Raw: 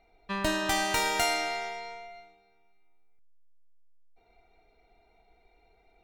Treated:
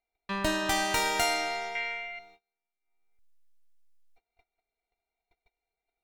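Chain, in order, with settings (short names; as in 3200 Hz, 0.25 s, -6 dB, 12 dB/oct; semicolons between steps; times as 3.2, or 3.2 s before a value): 1.75–2.19 band shelf 2200 Hz +13.5 dB 1.3 oct; gate -57 dBFS, range -29 dB; mismatched tape noise reduction encoder only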